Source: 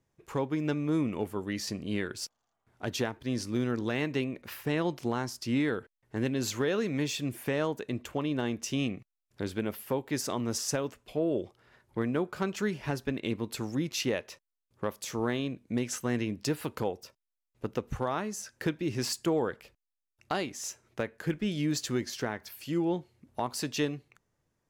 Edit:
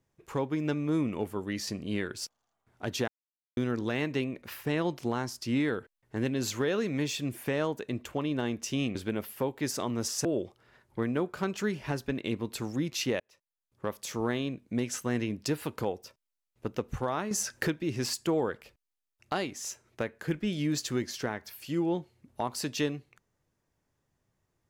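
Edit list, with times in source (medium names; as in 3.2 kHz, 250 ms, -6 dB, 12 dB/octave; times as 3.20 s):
3.08–3.57 s: mute
8.95–9.45 s: delete
10.75–11.24 s: delete
14.19–14.93 s: fade in
18.30–18.66 s: gain +8.5 dB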